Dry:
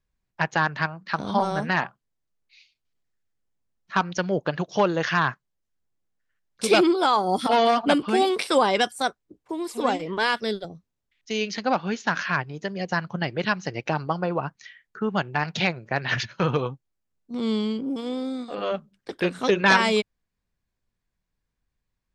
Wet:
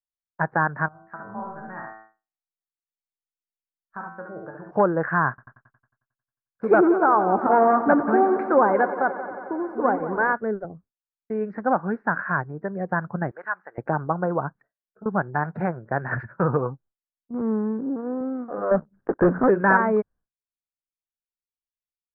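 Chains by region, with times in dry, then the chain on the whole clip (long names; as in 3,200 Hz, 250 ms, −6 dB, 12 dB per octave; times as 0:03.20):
0:00.88–0:04.71: tuned comb filter 110 Hz, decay 0.78 s, mix 90% + single-tap delay 70 ms −4 dB
0:05.29–0:10.33: high-shelf EQ 2,900 Hz +7.5 dB + echo machine with several playback heads 90 ms, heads first and second, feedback 72%, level −16 dB
0:13.31–0:13.78: high-pass filter 1,100 Hz + high-frequency loss of the air 130 metres
0:14.62–0:15.06: downward compressor, threshold −39 dBFS + low-pass with resonance 660 Hz, resonance Q 4.4 + string-ensemble chorus
0:17.41–0:18.21: running median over 25 samples + high-pass filter 120 Hz
0:18.71–0:19.49: high-shelf EQ 2,000 Hz −11 dB + leveller curve on the samples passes 3 + upward compression, threshold −41 dBFS
whole clip: elliptic low-pass filter 1,600 Hz, stop band 50 dB; downward expander −47 dBFS; level +2 dB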